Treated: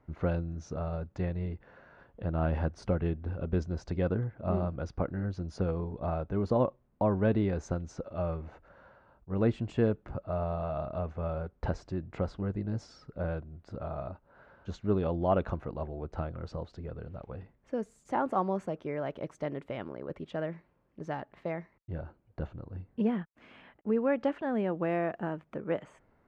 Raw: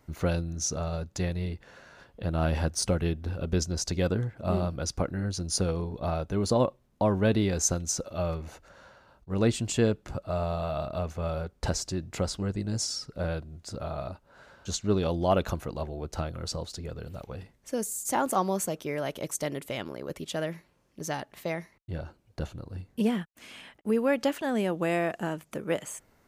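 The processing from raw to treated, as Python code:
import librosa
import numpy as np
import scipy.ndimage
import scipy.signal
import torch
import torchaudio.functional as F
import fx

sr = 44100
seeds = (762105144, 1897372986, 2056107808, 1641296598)

y = scipy.signal.sosfilt(scipy.signal.butter(2, 1700.0, 'lowpass', fs=sr, output='sos'), x)
y = y * librosa.db_to_amplitude(-2.5)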